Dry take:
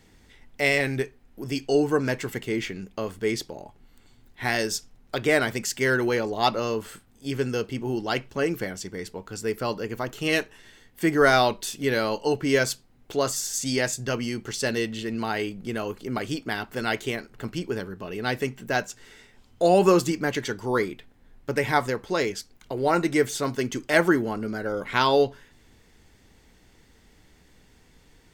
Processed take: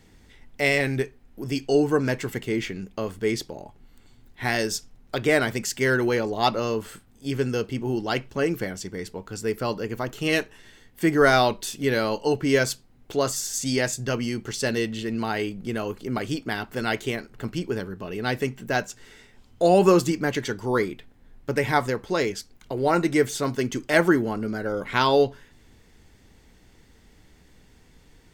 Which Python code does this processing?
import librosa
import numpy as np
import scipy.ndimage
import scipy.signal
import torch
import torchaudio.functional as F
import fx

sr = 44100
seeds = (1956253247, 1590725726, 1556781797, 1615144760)

y = fx.low_shelf(x, sr, hz=330.0, db=3.0)